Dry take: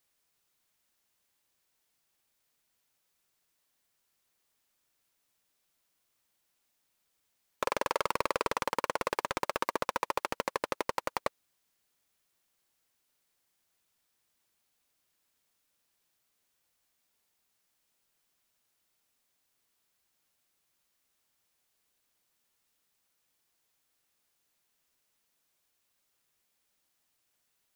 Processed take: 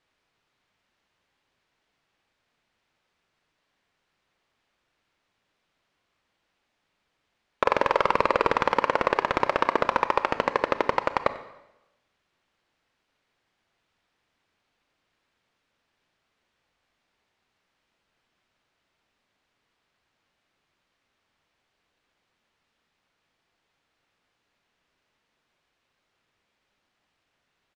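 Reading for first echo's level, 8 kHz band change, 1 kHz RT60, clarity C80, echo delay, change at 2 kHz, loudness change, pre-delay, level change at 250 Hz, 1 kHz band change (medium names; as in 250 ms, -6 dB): -19.0 dB, no reading, 0.95 s, 14.0 dB, 94 ms, +8.5 dB, +9.0 dB, 21 ms, +9.5 dB, +9.0 dB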